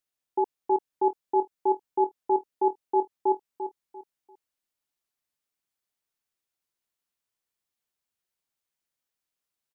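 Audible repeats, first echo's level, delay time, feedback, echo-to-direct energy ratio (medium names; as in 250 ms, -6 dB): 3, -9.5 dB, 344 ms, 30%, -9.0 dB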